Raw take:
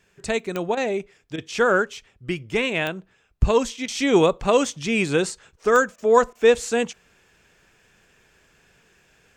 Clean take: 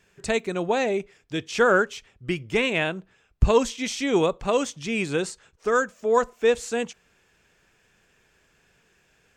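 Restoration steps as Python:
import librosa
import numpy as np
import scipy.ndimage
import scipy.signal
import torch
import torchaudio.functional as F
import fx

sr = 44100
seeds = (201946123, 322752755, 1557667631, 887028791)

y = fx.fix_declick_ar(x, sr, threshold=10.0)
y = fx.fix_interpolate(y, sr, at_s=(0.75, 1.36, 3.86, 5.96, 6.33), length_ms=20.0)
y = fx.fix_level(y, sr, at_s=3.95, step_db=-4.5)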